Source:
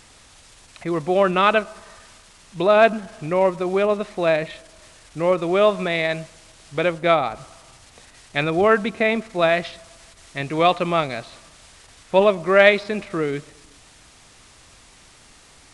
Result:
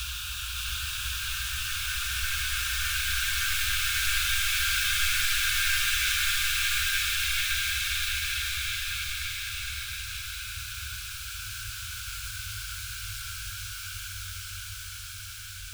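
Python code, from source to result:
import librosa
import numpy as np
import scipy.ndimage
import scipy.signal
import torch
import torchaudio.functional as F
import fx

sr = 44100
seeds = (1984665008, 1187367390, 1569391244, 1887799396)

p1 = fx.cycle_switch(x, sr, every=3, mode='inverted')
p2 = fx.paulstretch(p1, sr, seeds[0], factor=12.0, window_s=1.0, from_s=12.2)
p3 = scipy.signal.sosfilt(scipy.signal.cheby1(5, 1.0, [110.0, 1500.0], 'bandstop', fs=sr, output='sos'), p2)
p4 = fx.fixed_phaser(p3, sr, hz=520.0, stages=6)
p5 = p4 + fx.echo_single(p4, sr, ms=565, db=-3.0, dry=0)
y = p5 * librosa.db_to_amplitude(2.0)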